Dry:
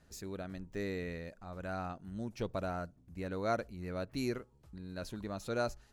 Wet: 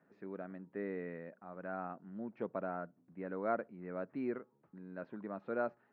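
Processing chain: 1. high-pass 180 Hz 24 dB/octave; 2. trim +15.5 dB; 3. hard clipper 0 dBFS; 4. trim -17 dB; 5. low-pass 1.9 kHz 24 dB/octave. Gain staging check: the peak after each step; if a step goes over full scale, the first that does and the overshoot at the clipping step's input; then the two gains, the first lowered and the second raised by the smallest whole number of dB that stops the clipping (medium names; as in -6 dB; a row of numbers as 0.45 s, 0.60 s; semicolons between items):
-19.0 dBFS, -3.5 dBFS, -3.5 dBFS, -20.5 dBFS, -21.0 dBFS; nothing clips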